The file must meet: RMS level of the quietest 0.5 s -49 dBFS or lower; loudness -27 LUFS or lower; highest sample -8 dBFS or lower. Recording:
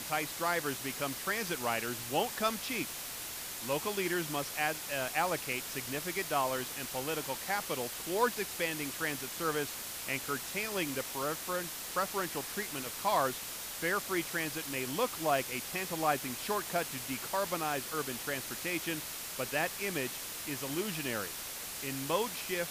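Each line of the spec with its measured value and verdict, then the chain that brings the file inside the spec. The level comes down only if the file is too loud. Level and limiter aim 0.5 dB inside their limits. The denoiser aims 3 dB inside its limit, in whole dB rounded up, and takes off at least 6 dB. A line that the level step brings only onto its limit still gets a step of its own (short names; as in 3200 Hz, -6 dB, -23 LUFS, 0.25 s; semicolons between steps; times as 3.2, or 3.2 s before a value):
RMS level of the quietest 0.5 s -42 dBFS: fail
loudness -34.0 LUFS: OK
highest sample -15.5 dBFS: OK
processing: denoiser 10 dB, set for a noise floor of -42 dBFS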